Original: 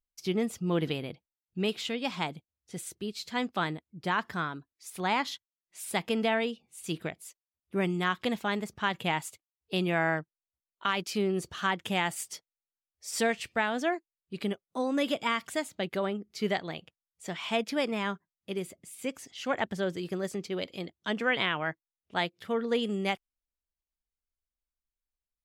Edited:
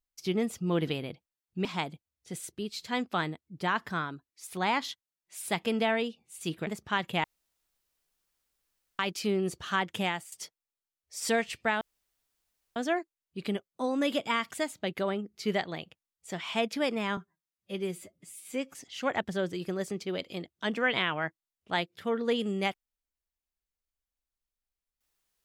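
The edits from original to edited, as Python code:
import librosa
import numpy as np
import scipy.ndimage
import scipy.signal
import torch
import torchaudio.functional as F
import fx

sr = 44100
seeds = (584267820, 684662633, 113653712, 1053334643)

y = fx.edit(x, sr, fx.cut(start_s=1.65, length_s=0.43),
    fx.cut(start_s=7.1, length_s=1.48),
    fx.room_tone_fill(start_s=9.15, length_s=1.75),
    fx.fade_out_to(start_s=11.92, length_s=0.31, floor_db=-18.0),
    fx.insert_room_tone(at_s=13.72, length_s=0.95),
    fx.stretch_span(start_s=18.13, length_s=1.05, factor=1.5), tone=tone)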